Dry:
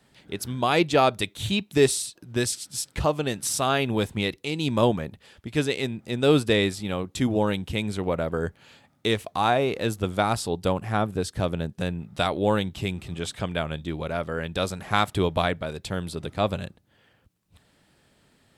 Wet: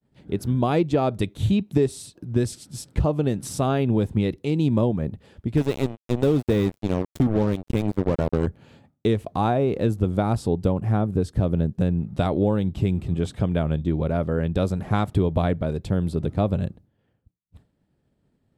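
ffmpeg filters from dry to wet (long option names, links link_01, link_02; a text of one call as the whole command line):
ffmpeg -i in.wav -filter_complex "[0:a]asettb=1/sr,asplit=3[link_01][link_02][link_03];[link_01]atrim=end=5.574[link_04];[link_02]atrim=start=5.57:end=8.47,asetpts=PTS-STARTPTS,afade=type=in:duration=0.004:curve=qsin,afade=type=out:start_time=2.896:duration=0.004:curve=qsin,acrusher=bits=3:mix=0:aa=0.5[link_05];[link_03]atrim=start=8.466[link_06];[link_04][link_05]acrossfade=duration=0.004:curve1=hsin:curve2=qsin[link_07];[link_07][link_06]acrossfade=duration=0.004:curve1=qsin:curve2=hsin,agate=range=-33dB:threshold=-52dB:ratio=3:detection=peak,tiltshelf=frequency=760:gain=9.5,acompressor=threshold=-18dB:ratio=6,volume=1.5dB" out.wav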